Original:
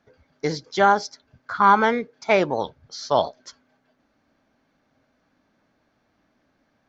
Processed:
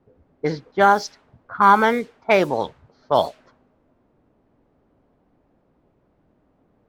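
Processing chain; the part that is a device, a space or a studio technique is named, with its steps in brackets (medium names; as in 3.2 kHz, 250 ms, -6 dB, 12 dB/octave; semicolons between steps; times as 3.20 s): cassette deck with a dynamic noise filter (white noise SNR 25 dB; level-controlled noise filter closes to 450 Hz, open at -15.5 dBFS); trim +2 dB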